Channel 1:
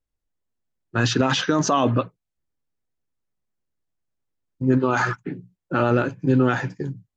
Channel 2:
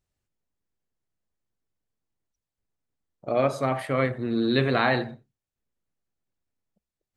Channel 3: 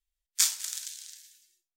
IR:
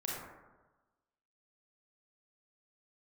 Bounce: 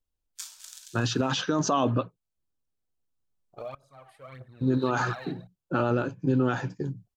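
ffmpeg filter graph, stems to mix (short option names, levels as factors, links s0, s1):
-filter_complex "[0:a]volume=0.708[s0];[1:a]aphaser=in_gain=1:out_gain=1:delay=2.9:decay=0.64:speed=1.7:type=triangular,aeval=exprs='val(0)*pow(10,-23*if(lt(mod(-0.58*n/s,1),2*abs(-0.58)/1000),1-mod(-0.58*n/s,1)/(2*abs(-0.58)/1000),(mod(-0.58*n/s,1)-2*abs(-0.58)/1000)/(1-2*abs(-0.58)/1000))/20)':c=same,adelay=300,volume=0.708[s1];[2:a]highshelf=f=2800:g=-11,volume=1[s2];[s1][s2]amix=inputs=2:normalize=0,equalizer=f=310:t=o:w=1.8:g=-10,acompressor=threshold=0.0158:ratio=5,volume=1[s3];[s0][s3]amix=inputs=2:normalize=0,equalizer=f=2000:w=3:g=-8.5,alimiter=limit=0.188:level=0:latency=1:release=394"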